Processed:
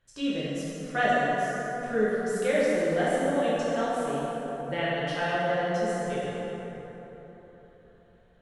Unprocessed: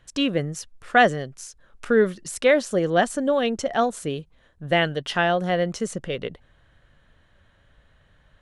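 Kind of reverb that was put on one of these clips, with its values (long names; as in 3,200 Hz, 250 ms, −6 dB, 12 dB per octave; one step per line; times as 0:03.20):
dense smooth reverb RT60 4.1 s, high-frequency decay 0.45×, DRR −9.5 dB
level −15 dB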